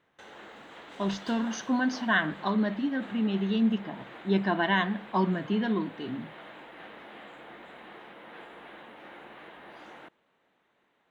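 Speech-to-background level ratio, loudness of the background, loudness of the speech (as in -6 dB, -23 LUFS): 18.0 dB, -46.5 LUFS, -28.5 LUFS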